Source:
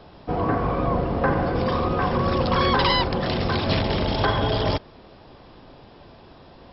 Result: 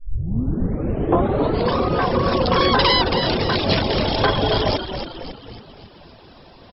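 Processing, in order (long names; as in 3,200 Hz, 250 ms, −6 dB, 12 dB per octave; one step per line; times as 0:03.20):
turntable start at the beginning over 1.76 s
dynamic equaliser 450 Hz, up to +4 dB, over −33 dBFS, Q 0.88
on a send: echo with shifted repeats 273 ms, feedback 50%, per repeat −52 Hz, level −7.5 dB
on the sum: reverb reduction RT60 0.56 s
high-shelf EQ 3,300 Hz +8.5 dB
level +1.5 dB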